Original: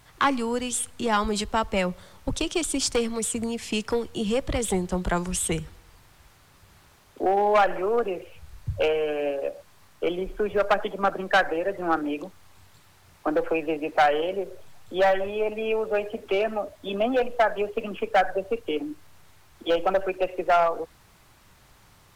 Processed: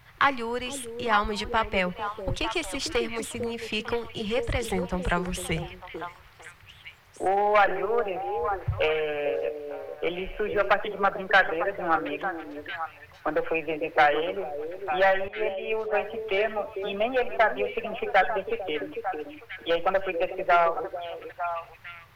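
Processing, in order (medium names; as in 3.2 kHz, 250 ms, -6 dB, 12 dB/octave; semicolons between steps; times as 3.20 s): 15.28–15.93 s: expander -23 dBFS; graphic EQ 125/250/2000/8000 Hz +6/-9/+6/-11 dB; repeats whose band climbs or falls 450 ms, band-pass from 370 Hz, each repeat 1.4 oct, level -4 dB; trim -1 dB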